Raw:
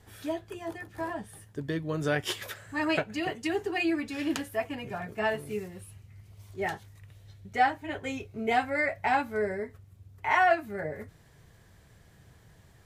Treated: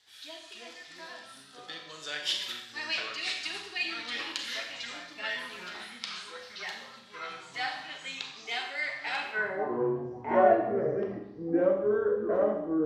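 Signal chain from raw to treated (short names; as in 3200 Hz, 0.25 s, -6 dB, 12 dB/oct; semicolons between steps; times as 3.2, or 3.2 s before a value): echoes that change speed 0.221 s, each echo -5 st, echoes 3; band-pass sweep 4000 Hz -> 400 Hz, 9.13–9.76; Schroeder reverb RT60 0.77 s, combs from 30 ms, DRR 3 dB; gain +7.5 dB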